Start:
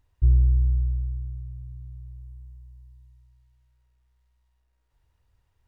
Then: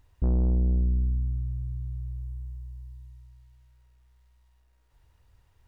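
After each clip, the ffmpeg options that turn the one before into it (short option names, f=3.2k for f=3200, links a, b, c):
-af "asoftclip=type=tanh:threshold=-27.5dB,volume=6.5dB"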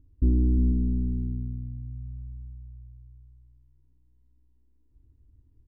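-filter_complex "[0:a]firequalizer=gain_entry='entry(110,0);entry(160,-8);entry(270,9);entry(570,-23);entry(1500,-28)':delay=0.05:min_phase=1,asplit=2[a][b];[b]aecho=0:1:72|352|493:0.251|0.447|0.251[c];[a][c]amix=inputs=2:normalize=0,volume=3dB"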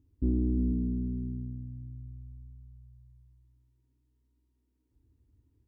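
-af "highpass=54,lowshelf=f=130:g=-7.5"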